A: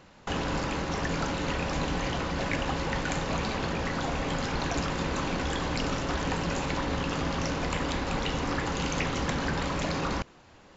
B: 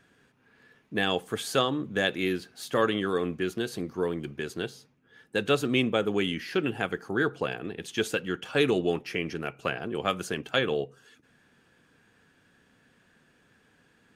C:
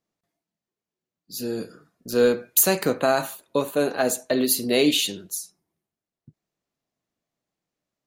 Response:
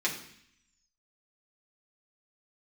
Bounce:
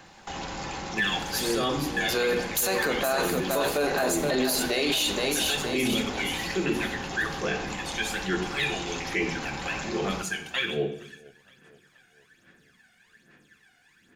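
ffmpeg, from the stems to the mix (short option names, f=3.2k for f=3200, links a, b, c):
-filter_complex "[0:a]equalizer=f=810:w=6.7:g=11,alimiter=level_in=0.5dB:limit=-24dB:level=0:latency=1,volume=-0.5dB,volume=-2dB,asplit=2[a][b];[b]volume=-13dB[c];[1:a]equalizer=f=1.9k:w=1.5:g=4.5,aphaser=in_gain=1:out_gain=1:delay=1.4:decay=0.77:speed=1.2:type=sinusoidal,volume=-12dB,asplit=3[d][e][f];[e]volume=-4dB[g];[f]volume=-20.5dB[h];[2:a]bandreject=f=60:t=h:w=6,bandreject=f=120:t=h:w=6,bandreject=f=180:t=h:w=6,bandreject=f=240:t=h:w=6,bandreject=f=300:t=h:w=6,bandreject=f=360:t=h:w=6,bandreject=f=420:t=h:w=6,bandreject=f=480:t=h:w=6,asplit=2[i][j];[j]highpass=f=720:p=1,volume=12dB,asoftclip=type=tanh:threshold=-3.5dB[k];[i][k]amix=inputs=2:normalize=0,lowpass=f=1.9k:p=1,volume=-6dB,volume=-3.5dB,asplit=3[l][m][n];[m]volume=-12dB[o];[n]volume=-6dB[p];[a][d]amix=inputs=2:normalize=0,acrossover=split=130[q][r];[r]acompressor=threshold=-35dB:ratio=6[s];[q][s]amix=inputs=2:normalize=0,alimiter=level_in=6.5dB:limit=-24dB:level=0:latency=1,volume=-6.5dB,volume=0dB[t];[3:a]atrim=start_sample=2205[u];[c][g][o]amix=inputs=3:normalize=0[v];[v][u]afir=irnorm=-1:irlink=0[w];[h][p]amix=inputs=2:normalize=0,aecho=0:1:469|938|1407|1876|2345|2814|3283:1|0.48|0.23|0.111|0.0531|0.0255|0.0122[x];[l][t][w][x]amix=inputs=4:normalize=0,highshelf=f=3.7k:g=10.5,alimiter=limit=-17dB:level=0:latency=1:release=12"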